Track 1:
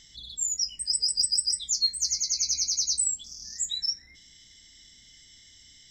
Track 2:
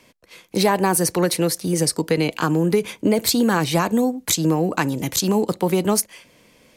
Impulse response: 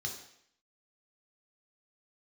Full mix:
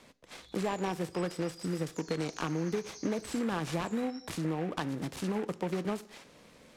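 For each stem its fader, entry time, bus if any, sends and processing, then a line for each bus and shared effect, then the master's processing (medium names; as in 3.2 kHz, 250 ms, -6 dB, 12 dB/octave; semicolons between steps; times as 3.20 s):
-15.5 dB, 0.25 s, send -3.5 dB, none
-3.0 dB, 0.00 s, send -16 dB, de-esser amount 50%; delay time shaken by noise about 1.4 kHz, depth 0.068 ms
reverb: on, RT60 0.65 s, pre-delay 3 ms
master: low-pass 11 kHz 12 dB/octave; compression 2:1, threshold -39 dBFS, peak gain reduction 12.5 dB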